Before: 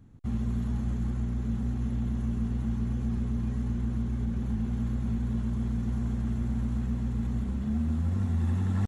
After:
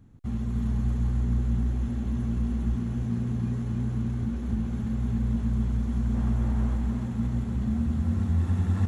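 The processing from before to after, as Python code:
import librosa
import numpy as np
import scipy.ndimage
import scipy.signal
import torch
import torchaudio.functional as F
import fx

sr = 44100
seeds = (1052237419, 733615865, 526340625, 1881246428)

y = fx.highpass(x, sr, hz=75.0, slope=24, at=(2.75, 4.23))
y = fx.peak_eq(y, sr, hz=890.0, db=7.5, octaves=1.8, at=(6.14, 6.76))
y = fx.echo_feedback(y, sr, ms=298, feedback_pct=54, wet_db=-4.0)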